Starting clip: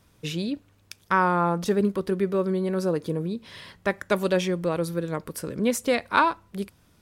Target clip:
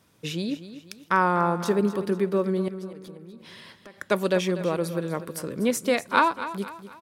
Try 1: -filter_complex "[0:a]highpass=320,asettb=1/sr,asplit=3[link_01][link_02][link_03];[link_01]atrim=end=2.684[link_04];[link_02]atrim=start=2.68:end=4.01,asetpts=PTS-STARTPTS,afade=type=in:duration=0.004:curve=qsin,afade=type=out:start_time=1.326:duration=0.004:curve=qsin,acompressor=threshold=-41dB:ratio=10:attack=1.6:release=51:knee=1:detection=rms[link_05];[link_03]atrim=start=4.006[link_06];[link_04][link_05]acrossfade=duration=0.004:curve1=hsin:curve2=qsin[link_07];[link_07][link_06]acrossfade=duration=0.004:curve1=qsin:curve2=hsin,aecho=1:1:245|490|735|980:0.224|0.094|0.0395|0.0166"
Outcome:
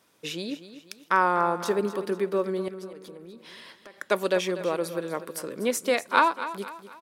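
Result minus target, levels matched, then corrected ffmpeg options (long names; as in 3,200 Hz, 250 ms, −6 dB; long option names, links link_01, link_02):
125 Hz band −8.0 dB
-filter_complex "[0:a]highpass=130,asettb=1/sr,asplit=3[link_01][link_02][link_03];[link_01]atrim=end=2.684[link_04];[link_02]atrim=start=2.68:end=4.01,asetpts=PTS-STARTPTS,afade=type=in:duration=0.004:curve=qsin,afade=type=out:start_time=1.326:duration=0.004:curve=qsin,acompressor=threshold=-41dB:ratio=10:attack=1.6:release=51:knee=1:detection=rms[link_05];[link_03]atrim=start=4.006[link_06];[link_04][link_05]acrossfade=duration=0.004:curve1=hsin:curve2=qsin[link_07];[link_07][link_06]acrossfade=duration=0.004:curve1=qsin:curve2=hsin,aecho=1:1:245|490|735|980:0.224|0.094|0.0395|0.0166"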